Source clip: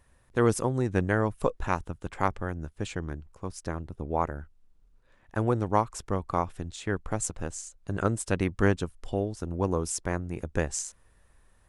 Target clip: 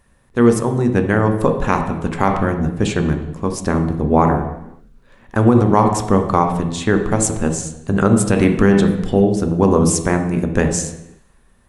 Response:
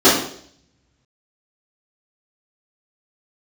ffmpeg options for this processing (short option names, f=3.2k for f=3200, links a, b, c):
-filter_complex "[0:a]dynaudnorm=f=220:g=13:m=10dB,asplit=2[a][b];[1:a]atrim=start_sample=2205,afade=t=out:st=0.4:d=0.01,atrim=end_sample=18081,asetrate=27342,aresample=44100[c];[b][c]afir=irnorm=-1:irlink=0,volume=-33.5dB[d];[a][d]amix=inputs=2:normalize=0,alimiter=level_in=6.5dB:limit=-1dB:release=50:level=0:latency=1,volume=-1dB"